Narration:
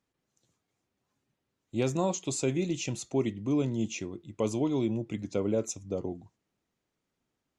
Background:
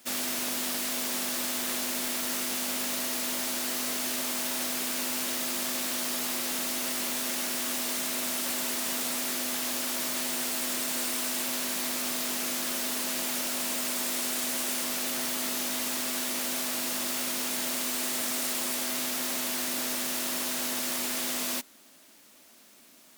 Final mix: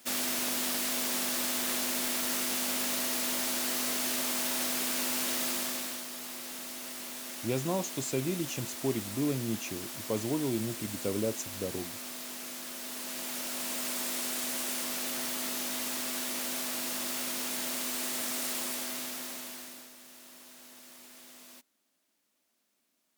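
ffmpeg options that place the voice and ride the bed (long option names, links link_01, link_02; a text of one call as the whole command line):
ffmpeg -i stem1.wav -i stem2.wav -filter_complex "[0:a]adelay=5700,volume=-3dB[link_01];[1:a]volume=6dB,afade=type=out:start_time=5.47:duration=0.59:silence=0.334965,afade=type=in:start_time=12.76:duration=1.11:silence=0.473151,afade=type=out:start_time=18.57:duration=1.34:silence=0.133352[link_02];[link_01][link_02]amix=inputs=2:normalize=0" out.wav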